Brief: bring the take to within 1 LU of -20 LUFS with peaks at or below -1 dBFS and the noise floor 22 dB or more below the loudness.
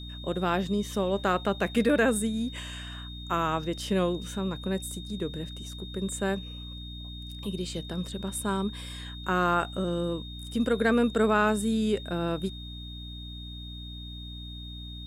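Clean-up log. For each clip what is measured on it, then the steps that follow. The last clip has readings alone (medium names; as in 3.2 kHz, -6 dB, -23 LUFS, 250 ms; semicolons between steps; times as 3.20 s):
hum 60 Hz; highest harmonic 300 Hz; hum level -39 dBFS; steady tone 3.7 kHz; tone level -43 dBFS; loudness -29.0 LUFS; peak level -12.5 dBFS; loudness target -20.0 LUFS
-> de-hum 60 Hz, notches 5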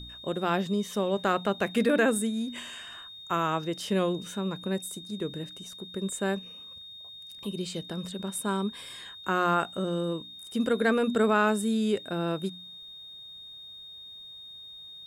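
hum not found; steady tone 3.7 kHz; tone level -43 dBFS
-> band-stop 3.7 kHz, Q 30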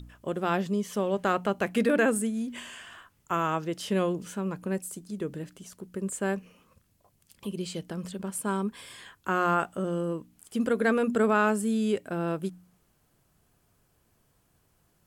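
steady tone not found; loudness -29.0 LUFS; peak level -12.5 dBFS; loudness target -20.0 LUFS
-> trim +9 dB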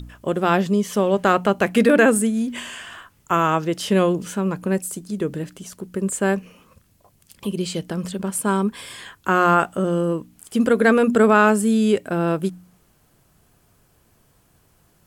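loudness -20.0 LUFS; peak level -3.5 dBFS; noise floor -60 dBFS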